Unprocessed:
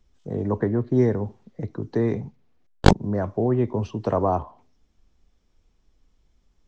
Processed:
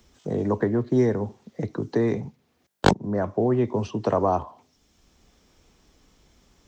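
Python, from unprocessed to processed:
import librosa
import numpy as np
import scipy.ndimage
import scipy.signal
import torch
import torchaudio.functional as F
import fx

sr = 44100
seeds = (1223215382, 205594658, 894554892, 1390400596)

y = fx.highpass(x, sr, hz=140.0, slope=6)
y = fx.high_shelf(y, sr, hz=4200.0, db=7.0)
y = fx.band_squash(y, sr, depth_pct=40)
y = F.gain(torch.from_numpy(y), 1.0).numpy()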